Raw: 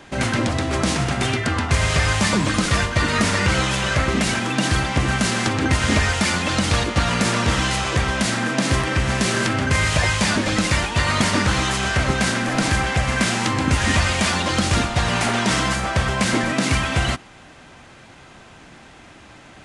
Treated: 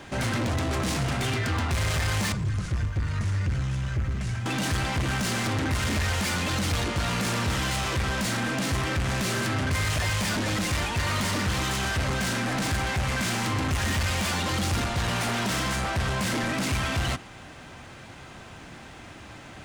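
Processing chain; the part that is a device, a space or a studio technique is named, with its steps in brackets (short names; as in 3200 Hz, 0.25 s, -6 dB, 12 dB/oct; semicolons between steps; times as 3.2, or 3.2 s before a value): 2.32–4.46 EQ curve 130 Hz 0 dB, 250 Hz -20 dB, 1600 Hz -14 dB, 3800 Hz -18 dB, 6200 Hz -15 dB, 9100 Hz -18 dB; open-reel tape (soft clip -25.5 dBFS, distortion -7 dB; bell 94 Hz +4.5 dB 1.03 oct; white noise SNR 46 dB)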